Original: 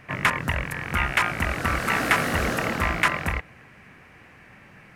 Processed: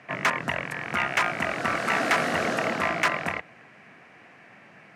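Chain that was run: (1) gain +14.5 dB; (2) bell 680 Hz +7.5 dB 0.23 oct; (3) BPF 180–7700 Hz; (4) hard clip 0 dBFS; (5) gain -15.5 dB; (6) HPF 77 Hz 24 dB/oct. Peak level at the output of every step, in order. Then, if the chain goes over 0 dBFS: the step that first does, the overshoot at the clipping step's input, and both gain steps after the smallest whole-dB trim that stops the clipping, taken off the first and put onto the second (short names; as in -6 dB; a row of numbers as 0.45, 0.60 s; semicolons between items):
+10.0, +10.0, +9.0, 0.0, -15.5, -12.5 dBFS; step 1, 9.0 dB; step 1 +5.5 dB, step 5 -6.5 dB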